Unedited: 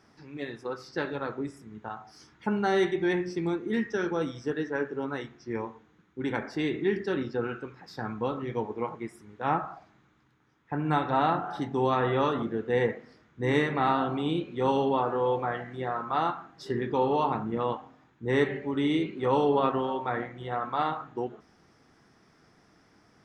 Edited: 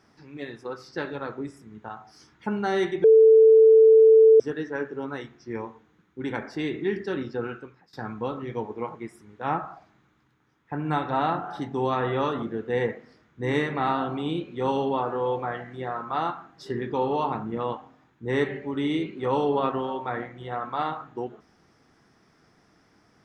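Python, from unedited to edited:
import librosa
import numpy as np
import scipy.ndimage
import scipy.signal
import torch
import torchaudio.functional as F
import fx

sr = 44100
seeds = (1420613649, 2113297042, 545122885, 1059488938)

y = fx.edit(x, sr, fx.bleep(start_s=3.04, length_s=1.36, hz=443.0, db=-10.5),
    fx.fade_out_to(start_s=7.49, length_s=0.44, floor_db=-19.0), tone=tone)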